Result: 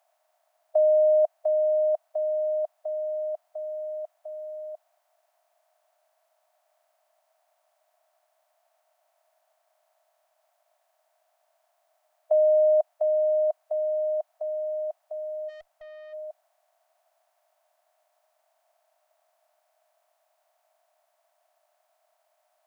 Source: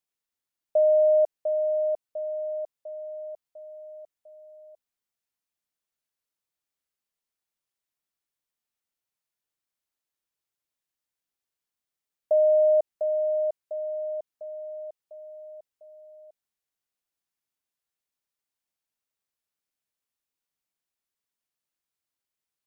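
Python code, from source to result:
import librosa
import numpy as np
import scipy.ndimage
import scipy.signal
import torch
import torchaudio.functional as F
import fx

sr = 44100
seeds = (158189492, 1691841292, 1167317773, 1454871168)

y = fx.bin_compress(x, sr, power=0.6)
y = scipy.signal.sosfilt(scipy.signal.ellip(4, 1.0, 40, 680.0, 'highpass', fs=sr, output='sos'), y)
y = fx.tube_stage(y, sr, drive_db=50.0, bias=0.3, at=(15.48, 16.12), fade=0.02)
y = F.gain(torch.from_numpy(y), 7.5).numpy()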